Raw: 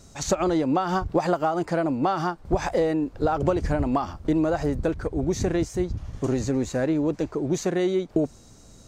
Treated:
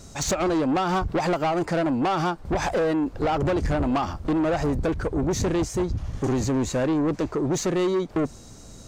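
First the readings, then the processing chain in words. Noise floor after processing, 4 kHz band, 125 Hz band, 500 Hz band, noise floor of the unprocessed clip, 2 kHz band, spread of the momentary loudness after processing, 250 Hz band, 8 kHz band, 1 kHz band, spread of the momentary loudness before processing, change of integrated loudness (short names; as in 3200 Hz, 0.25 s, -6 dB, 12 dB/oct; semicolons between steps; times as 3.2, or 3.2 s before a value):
-45 dBFS, +4.0 dB, +1.0 dB, 0.0 dB, -50 dBFS, +2.5 dB, 4 LU, +0.5 dB, +3.5 dB, +1.0 dB, 4 LU, +0.5 dB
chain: soft clip -25 dBFS, distortion -10 dB; gain +5.5 dB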